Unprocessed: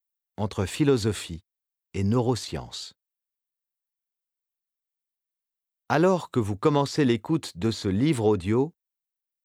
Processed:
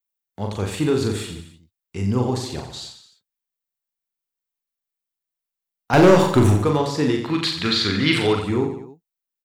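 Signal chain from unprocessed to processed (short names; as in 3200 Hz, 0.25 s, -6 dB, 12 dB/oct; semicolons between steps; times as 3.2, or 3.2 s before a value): 5.93–6.57 sample leveller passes 3; 7.22–8.35 band shelf 2500 Hz +14.5 dB 2.4 oct; reverse bouncing-ball echo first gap 40 ms, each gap 1.2×, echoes 5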